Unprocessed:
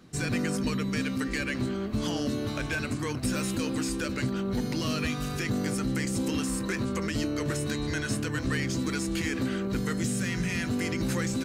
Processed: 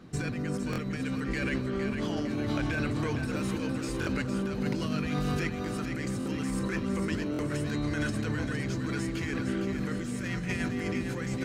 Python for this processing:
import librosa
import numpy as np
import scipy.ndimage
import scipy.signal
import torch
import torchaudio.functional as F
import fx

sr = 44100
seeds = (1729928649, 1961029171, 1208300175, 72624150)

y = fx.high_shelf(x, sr, hz=3700.0, db=-10.5)
y = fx.over_compress(y, sr, threshold_db=-33.0, ratio=-1.0)
y = fx.echo_split(y, sr, split_hz=710.0, low_ms=237, high_ms=459, feedback_pct=52, wet_db=-7.0)
y = fx.buffer_glitch(y, sr, at_s=(0.71, 4.0, 6.19, 7.32), block=1024, repeats=2)
y = y * librosa.db_to_amplitude(1.0)